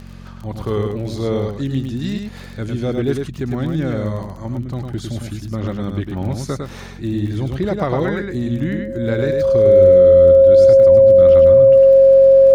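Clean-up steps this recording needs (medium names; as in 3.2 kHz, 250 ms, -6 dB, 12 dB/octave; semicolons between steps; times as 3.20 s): de-click; de-hum 45.5 Hz, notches 5; band-stop 540 Hz, Q 30; inverse comb 104 ms -4.5 dB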